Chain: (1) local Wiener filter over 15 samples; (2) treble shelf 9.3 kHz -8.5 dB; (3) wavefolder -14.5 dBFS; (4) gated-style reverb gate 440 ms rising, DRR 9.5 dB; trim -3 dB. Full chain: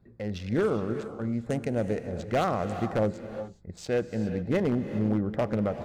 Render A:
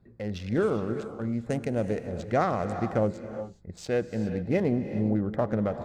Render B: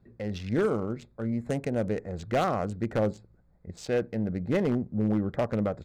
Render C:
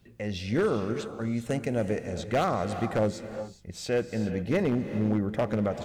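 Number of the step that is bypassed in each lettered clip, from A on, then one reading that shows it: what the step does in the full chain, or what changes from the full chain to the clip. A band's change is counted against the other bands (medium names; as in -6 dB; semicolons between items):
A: 3, distortion -17 dB; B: 4, crest factor change -1.5 dB; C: 1, 8 kHz band +4.5 dB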